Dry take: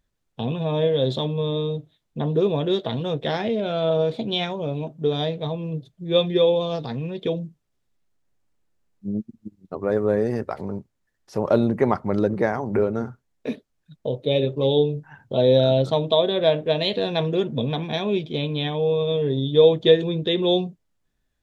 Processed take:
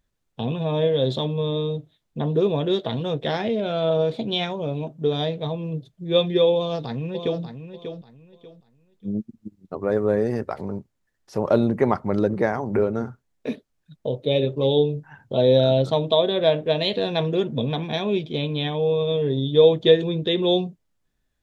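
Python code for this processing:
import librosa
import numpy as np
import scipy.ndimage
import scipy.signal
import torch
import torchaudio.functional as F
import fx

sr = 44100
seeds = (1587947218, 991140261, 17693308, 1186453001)

y = fx.echo_throw(x, sr, start_s=6.55, length_s=0.87, ms=590, feedback_pct=25, wet_db=-9.0)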